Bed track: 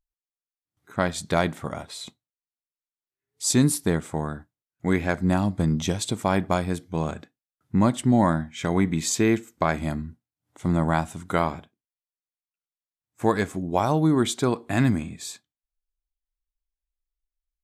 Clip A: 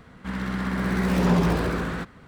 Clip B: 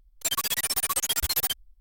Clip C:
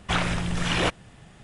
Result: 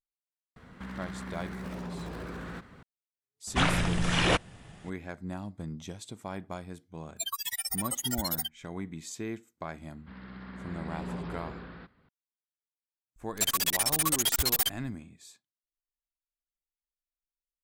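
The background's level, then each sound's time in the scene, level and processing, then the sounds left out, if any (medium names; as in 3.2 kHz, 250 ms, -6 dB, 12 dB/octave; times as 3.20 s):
bed track -16 dB
0.56 s: add A -3.5 dB + compression, threshold -33 dBFS
3.47 s: add C -1 dB
6.95 s: add B -5.5 dB + spectral noise reduction 23 dB
9.82 s: add A -17 dB + resampled via 11.025 kHz
13.16 s: add B -0.5 dB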